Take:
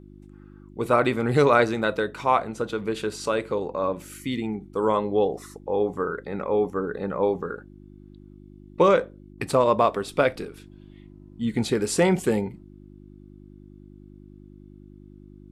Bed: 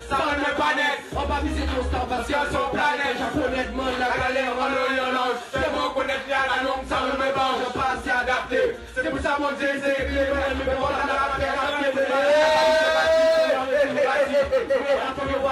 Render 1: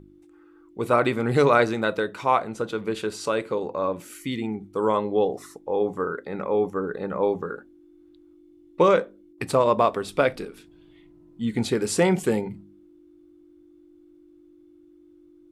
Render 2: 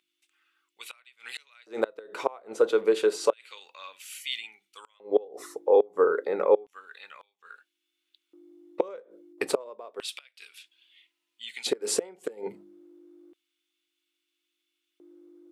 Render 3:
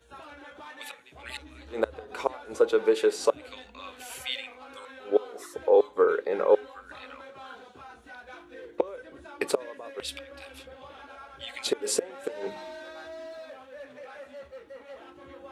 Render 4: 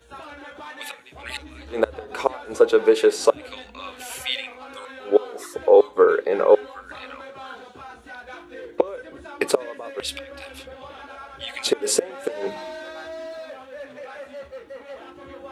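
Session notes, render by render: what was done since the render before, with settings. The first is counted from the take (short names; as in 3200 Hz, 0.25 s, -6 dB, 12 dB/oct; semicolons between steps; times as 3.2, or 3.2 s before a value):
de-hum 50 Hz, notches 5
flipped gate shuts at -14 dBFS, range -28 dB; LFO high-pass square 0.3 Hz 450–2800 Hz
add bed -23.5 dB
gain +6.5 dB; limiter -3 dBFS, peak gain reduction 1 dB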